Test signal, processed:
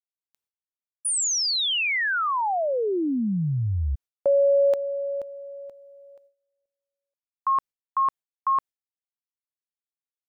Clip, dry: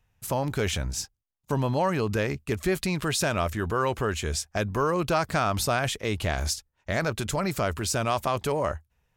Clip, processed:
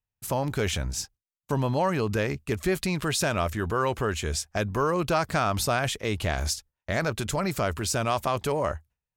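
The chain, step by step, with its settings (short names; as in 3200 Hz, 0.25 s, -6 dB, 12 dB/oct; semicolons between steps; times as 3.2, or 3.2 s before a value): gate with hold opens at -49 dBFS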